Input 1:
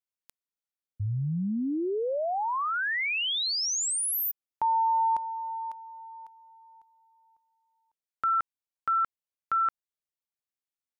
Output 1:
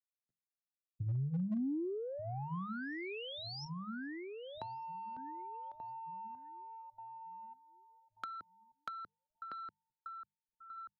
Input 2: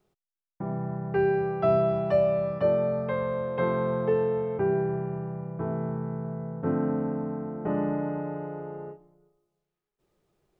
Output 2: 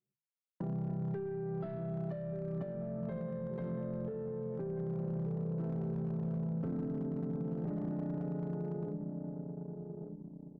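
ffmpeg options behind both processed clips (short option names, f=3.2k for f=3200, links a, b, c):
-filter_complex "[0:a]highpass=f=120:w=0.5412,highpass=f=120:w=1.3066,aresample=11025,asoftclip=type=tanh:threshold=-21.5dB,aresample=44100,equalizer=f=160:t=o:w=0.67:g=5,equalizer=f=1k:t=o:w=0.67:g=-6,equalizer=f=2.5k:t=o:w=0.67:g=-8,alimiter=level_in=4dB:limit=-24dB:level=0:latency=1:release=431,volume=-4dB,asplit=2[a][b];[b]adelay=1184,lowpass=f=1.1k:p=1,volume=-8dB,asplit=2[c][d];[d]adelay=1184,lowpass=f=1.1k:p=1,volume=0.53,asplit=2[e][f];[f]adelay=1184,lowpass=f=1.1k:p=1,volume=0.53,asplit=2[g][h];[h]adelay=1184,lowpass=f=1.1k:p=1,volume=0.53,asplit=2[i][j];[j]adelay=1184,lowpass=f=1.1k:p=1,volume=0.53,asplit=2[k][l];[l]adelay=1184,lowpass=f=1.1k:p=1,volume=0.53[m];[c][e][g][i][k][m]amix=inputs=6:normalize=0[n];[a][n]amix=inputs=2:normalize=0,acompressor=threshold=-38dB:ratio=6:attack=16:release=28:knee=1:detection=peak,bandreject=f=50:t=h:w=6,bandreject=f=100:t=h:w=6,bandreject=f=150:t=h:w=6,bandreject=f=200:t=h:w=6,anlmdn=0.1,acrossover=split=340[o][p];[p]acompressor=threshold=-54dB:ratio=2.5:attack=46:release=471:knee=2.83:detection=peak[q];[o][q]amix=inputs=2:normalize=0,asoftclip=type=hard:threshold=-34dB,volume=3dB"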